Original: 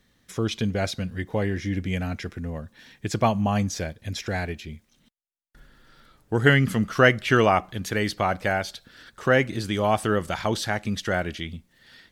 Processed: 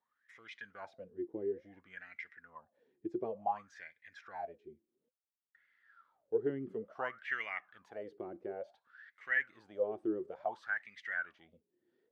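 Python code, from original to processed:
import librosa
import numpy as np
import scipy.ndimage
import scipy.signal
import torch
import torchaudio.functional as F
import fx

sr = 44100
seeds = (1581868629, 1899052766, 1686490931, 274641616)

y = fx.wah_lfo(x, sr, hz=0.57, low_hz=340.0, high_hz=2100.0, q=15.0)
y = y * 10.0 ** (1.5 / 20.0)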